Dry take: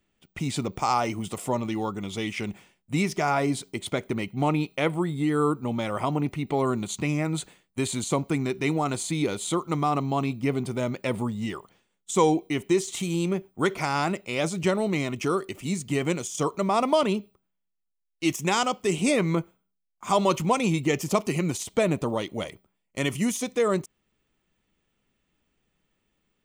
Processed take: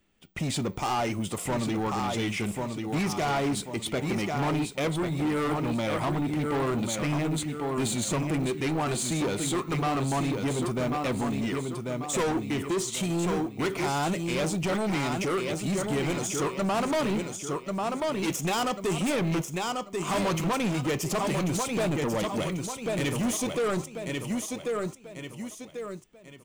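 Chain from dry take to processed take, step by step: in parallel at -6.5 dB: wavefolder -18 dBFS; on the sum: short-mantissa float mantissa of 4-bit; on a send: feedback delay 1091 ms, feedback 35%, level -7 dB; on the sum: saturation -24 dBFS, distortion -8 dB; flange 0.27 Hz, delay 3.5 ms, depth 7 ms, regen -84%; trim +4.5 dB

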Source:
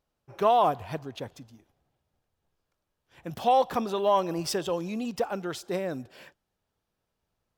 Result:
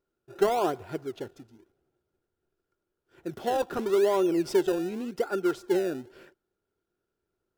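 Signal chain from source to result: small resonant body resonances 370/1400 Hz, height 18 dB, ringing for 40 ms; in parallel at -9 dB: decimation with a swept rate 28×, swing 100% 0.89 Hz; on the sum: trim -9 dB

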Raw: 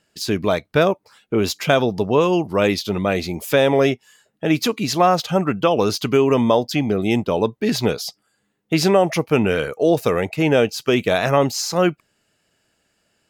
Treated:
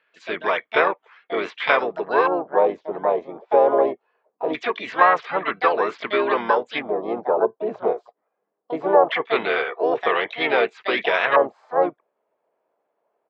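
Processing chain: cabinet simulation 450–4400 Hz, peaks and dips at 460 Hz +6 dB, 1.1 kHz +9 dB, 2.2 kHz +9 dB; LFO low-pass square 0.22 Hz 690–1800 Hz; harmony voices -3 st -8 dB, +7 st -6 dB; trim -7 dB

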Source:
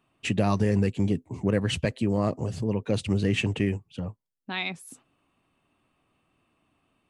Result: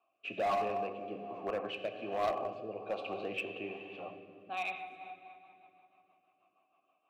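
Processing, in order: vowel filter a; three-band isolator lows -13 dB, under 230 Hz, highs -16 dB, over 4.5 kHz; reverberation RT60 3.0 s, pre-delay 4 ms, DRR 3.5 dB; rotary cabinet horn 1.2 Hz, later 6.3 Hz, at 4.57 s; in parallel at -3 dB: wavefolder -37.5 dBFS; on the sum: trim +3.5 dB

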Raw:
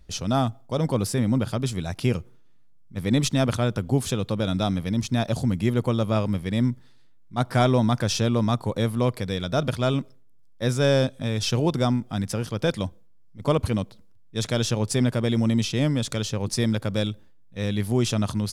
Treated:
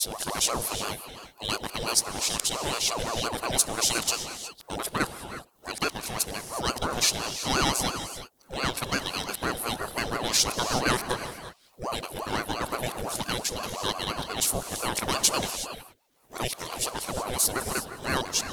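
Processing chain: reverse the whole clip; RIAA curve recording; band-stop 2.3 kHz; reverberation, pre-delay 3 ms, DRR 9 dB; ring modulator with a swept carrier 590 Hz, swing 60%, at 5.8 Hz

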